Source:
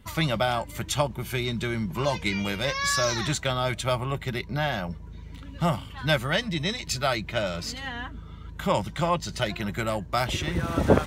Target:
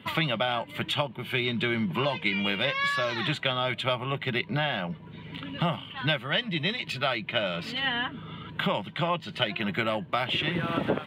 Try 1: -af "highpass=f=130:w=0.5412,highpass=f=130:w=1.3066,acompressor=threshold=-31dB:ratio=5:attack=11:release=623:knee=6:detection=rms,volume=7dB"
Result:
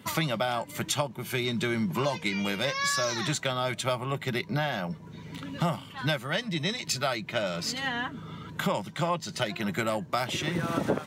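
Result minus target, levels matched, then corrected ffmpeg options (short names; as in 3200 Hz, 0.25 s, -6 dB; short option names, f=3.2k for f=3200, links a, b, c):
8000 Hz band +19.0 dB
-af "highpass=f=130:w=0.5412,highpass=f=130:w=1.3066,acompressor=threshold=-31dB:ratio=5:attack=11:release=623:knee=6:detection=rms,highshelf=f=4.3k:t=q:w=3:g=-12,volume=7dB"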